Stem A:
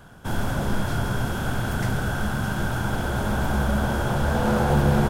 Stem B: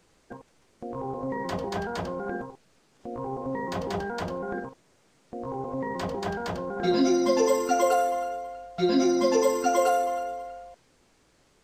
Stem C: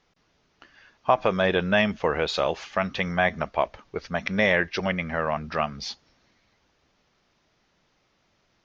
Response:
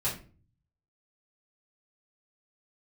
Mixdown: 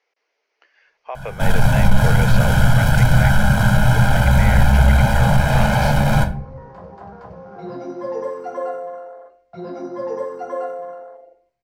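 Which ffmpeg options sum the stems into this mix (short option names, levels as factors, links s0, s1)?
-filter_complex "[0:a]volume=21.1,asoftclip=hard,volume=0.0473,aecho=1:1:1.3:0.95,adelay=1150,volume=1.19,asplit=2[s0][s1];[s1]volume=0.473[s2];[1:a]afwtdn=0.0355,adelay=750,volume=0.237,asplit=2[s3][s4];[s4]volume=0.355[s5];[2:a]volume=0.562[s6];[s3][s6]amix=inputs=2:normalize=0,highpass=f=430:w=0.5412,highpass=f=430:w=1.3066,equalizer=f=460:t=q:w=4:g=5,equalizer=f=1200:t=q:w=4:g=-4,equalizer=f=2200:t=q:w=4:g=7,equalizer=f=3600:t=q:w=4:g=-7,lowpass=f=6300:w=0.5412,lowpass=f=6300:w=1.3066,alimiter=limit=0.112:level=0:latency=1:release=383,volume=1[s7];[3:a]atrim=start_sample=2205[s8];[s2][s5]amix=inputs=2:normalize=0[s9];[s9][s8]afir=irnorm=-1:irlink=0[s10];[s0][s7][s10]amix=inputs=3:normalize=0,dynaudnorm=f=190:g=13:m=2.51"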